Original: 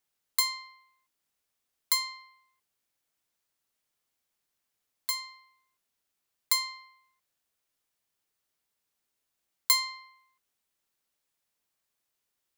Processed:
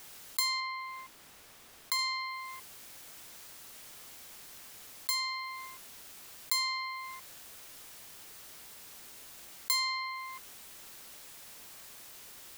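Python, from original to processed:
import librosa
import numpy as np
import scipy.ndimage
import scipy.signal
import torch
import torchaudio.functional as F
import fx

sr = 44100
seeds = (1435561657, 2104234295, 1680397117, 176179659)

y = fx.high_shelf(x, sr, hz=3800.0, db=-7.5, at=(0.6, 1.99))
y = fx.env_flatten(y, sr, amount_pct=70)
y = y * 10.0 ** (-8.0 / 20.0)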